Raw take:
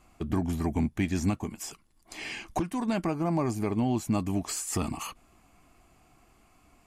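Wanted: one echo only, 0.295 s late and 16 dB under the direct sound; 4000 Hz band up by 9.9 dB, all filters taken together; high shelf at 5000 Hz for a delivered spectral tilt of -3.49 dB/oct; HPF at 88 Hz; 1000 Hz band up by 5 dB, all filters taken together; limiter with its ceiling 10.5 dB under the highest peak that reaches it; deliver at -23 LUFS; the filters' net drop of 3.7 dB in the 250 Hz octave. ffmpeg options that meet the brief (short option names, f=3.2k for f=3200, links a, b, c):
-af "highpass=88,equalizer=f=250:t=o:g=-5,equalizer=f=1k:t=o:g=6,equalizer=f=4k:t=o:g=8.5,highshelf=f=5k:g=8.5,alimiter=limit=-24dB:level=0:latency=1,aecho=1:1:295:0.158,volume=11dB"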